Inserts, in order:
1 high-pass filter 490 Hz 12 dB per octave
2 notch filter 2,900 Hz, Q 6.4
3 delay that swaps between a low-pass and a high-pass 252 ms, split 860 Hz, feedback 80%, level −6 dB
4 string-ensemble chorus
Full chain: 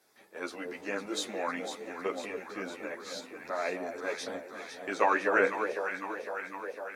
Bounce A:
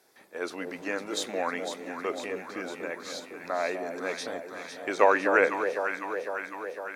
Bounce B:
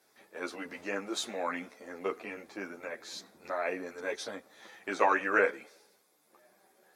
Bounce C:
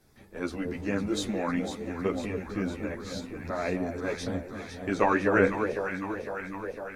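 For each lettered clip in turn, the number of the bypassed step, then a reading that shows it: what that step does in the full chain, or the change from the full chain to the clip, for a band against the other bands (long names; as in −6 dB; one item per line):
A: 4, 500 Hz band +1.5 dB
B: 3, change in momentary loudness spread +3 LU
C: 1, 125 Hz band +19.5 dB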